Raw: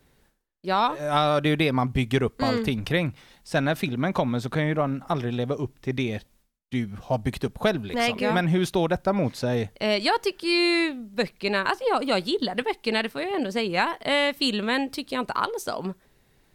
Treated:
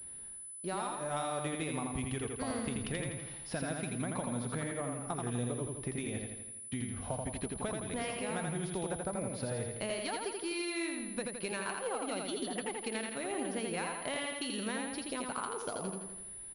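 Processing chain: compressor 6:1, threshold -35 dBFS, peak gain reduction 17 dB; on a send: feedback echo 83 ms, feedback 56%, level -3.5 dB; on the sum: pulse-width modulation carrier 10000 Hz; gain -1.5 dB

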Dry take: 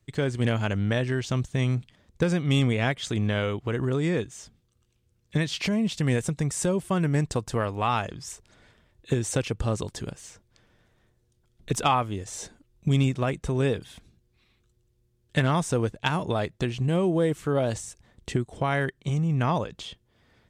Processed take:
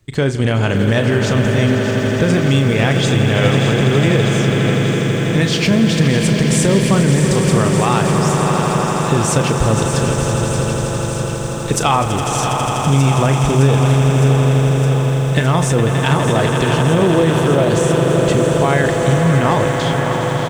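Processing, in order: doubler 36 ms -11.5 dB; on a send: swelling echo 82 ms, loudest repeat 8, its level -12.5 dB; on the sum: maximiser +15 dB; lo-fi delay 0.612 s, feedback 80%, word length 6-bit, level -10 dB; gain -4 dB

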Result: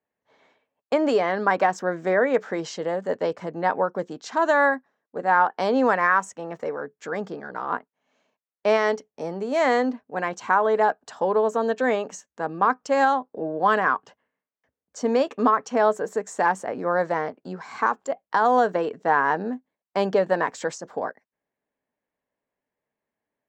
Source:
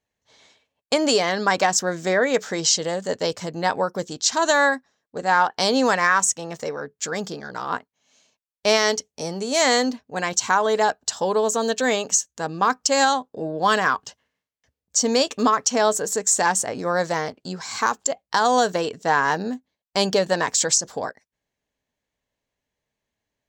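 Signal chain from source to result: three-band isolator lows -15 dB, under 170 Hz, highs -22 dB, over 2200 Hz

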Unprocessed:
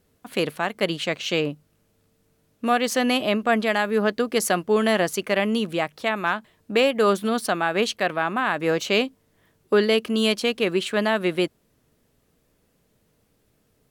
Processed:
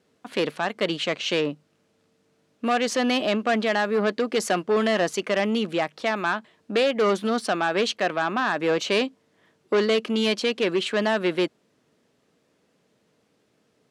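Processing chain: added harmonics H 5 -15 dB, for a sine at -8.5 dBFS; BPF 190–6500 Hz; gain -3.5 dB

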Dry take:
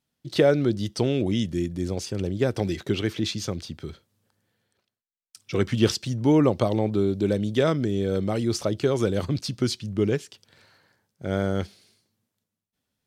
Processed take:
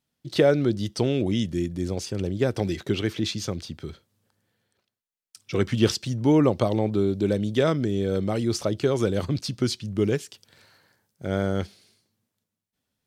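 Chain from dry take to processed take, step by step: 9.95–11.27 high shelf 7500 Hz +7.5 dB

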